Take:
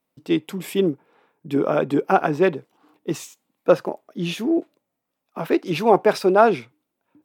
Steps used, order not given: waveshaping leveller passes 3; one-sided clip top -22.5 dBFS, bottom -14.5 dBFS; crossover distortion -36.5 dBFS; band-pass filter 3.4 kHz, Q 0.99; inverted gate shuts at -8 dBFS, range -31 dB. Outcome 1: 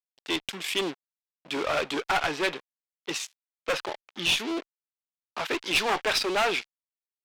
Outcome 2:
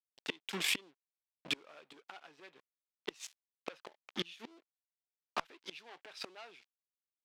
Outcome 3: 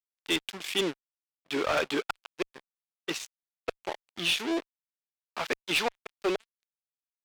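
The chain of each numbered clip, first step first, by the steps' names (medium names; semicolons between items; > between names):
waveshaping leveller > crossover distortion > band-pass filter > one-sided clip > inverted gate; waveshaping leveller > crossover distortion > inverted gate > band-pass filter > one-sided clip; inverted gate > crossover distortion > band-pass filter > waveshaping leveller > one-sided clip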